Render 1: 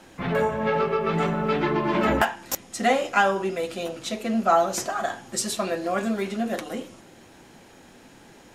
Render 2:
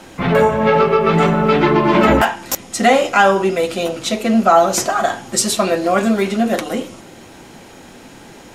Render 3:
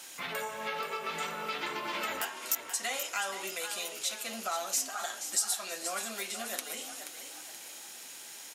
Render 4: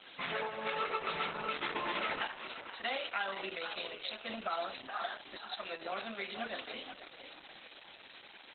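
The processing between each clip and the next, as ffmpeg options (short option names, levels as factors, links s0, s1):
-af "bandreject=f=1700:w=21,alimiter=level_in=3.76:limit=0.891:release=50:level=0:latency=1,volume=0.891"
-filter_complex "[0:a]aderivative,acompressor=threshold=0.00891:ratio=2,asplit=6[s0][s1][s2][s3][s4][s5];[s1]adelay=479,afreqshift=39,volume=0.335[s6];[s2]adelay=958,afreqshift=78,volume=0.157[s7];[s3]adelay=1437,afreqshift=117,volume=0.0741[s8];[s4]adelay=1916,afreqshift=156,volume=0.0347[s9];[s5]adelay=2395,afreqshift=195,volume=0.0164[s10];[s0][s6][s7][s8][s9][s10]amix=inputs=6:normalize=0,volume=1.33"
-af "volume=1.19" -ar 48000 -c:a libopus -b:a 8k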